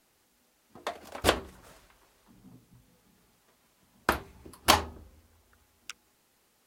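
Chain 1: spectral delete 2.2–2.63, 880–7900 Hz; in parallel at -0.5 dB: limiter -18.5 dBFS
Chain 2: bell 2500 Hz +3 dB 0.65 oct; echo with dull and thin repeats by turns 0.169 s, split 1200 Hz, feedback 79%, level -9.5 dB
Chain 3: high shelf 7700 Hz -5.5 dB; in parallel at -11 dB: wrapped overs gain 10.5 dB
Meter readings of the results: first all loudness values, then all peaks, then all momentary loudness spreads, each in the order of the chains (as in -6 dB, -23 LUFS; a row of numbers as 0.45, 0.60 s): -26.5, -31.0, -28.5 LUFS; -6.5, -7.0, -8.5 dBFS; 20, 23, 22 LU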